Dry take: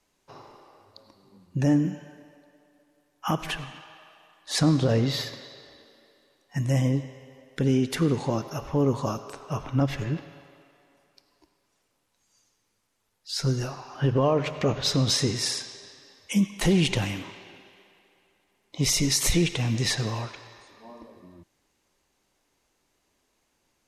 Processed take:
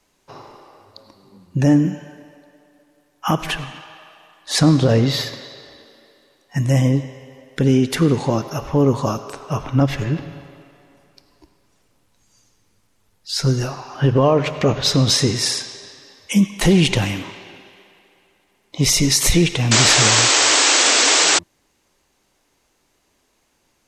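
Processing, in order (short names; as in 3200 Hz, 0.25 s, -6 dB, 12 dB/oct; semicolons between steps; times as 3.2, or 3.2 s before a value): 10.19–13.38 low shelf 230 Hz +11 dB; 19.71–21.39 painted sound noise 260–8200 Hz -22 dBFS; gain +7.5 dB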